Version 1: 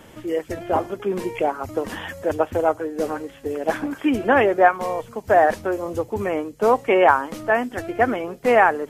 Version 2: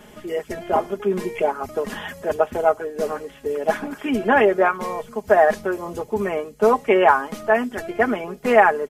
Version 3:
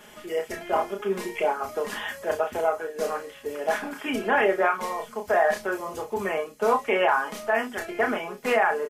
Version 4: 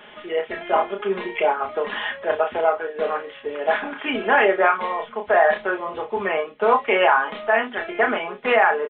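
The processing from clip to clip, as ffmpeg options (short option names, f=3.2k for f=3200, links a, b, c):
-af "aecho=1:1:4.8:0.69,volume=-1dB"
-af "lowshelf=f=460:g=-11.5,alimiter=limit=-13.5dB:level=0:latency=1:release=24,aecho=1:1:31|60:0.562|0.15"
-af "lowshelf=f=240:g=-10,aresample=8000,aresample=44100,volume=6dB"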